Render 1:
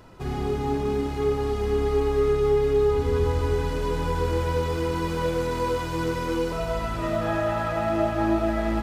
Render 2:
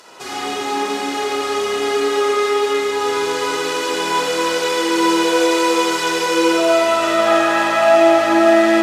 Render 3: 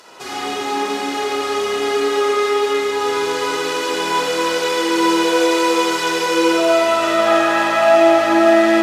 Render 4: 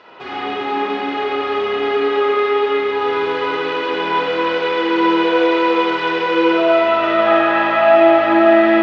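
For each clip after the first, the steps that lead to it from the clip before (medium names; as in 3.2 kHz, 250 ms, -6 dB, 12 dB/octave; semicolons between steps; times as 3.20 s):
high-pass 460 Hz 12 dB/octave; peaking EQ 6.7 kHz +14.5 dB 2.3 oct; spring tank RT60 1.7 s, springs 39/54 ms, chirp 65 ms, DRR -5 dB; trim +5 dB
peaking EQ 8.1 kHz -2 dB
low-pass 3.2 kHz 24 dB/octave; trim +1 dB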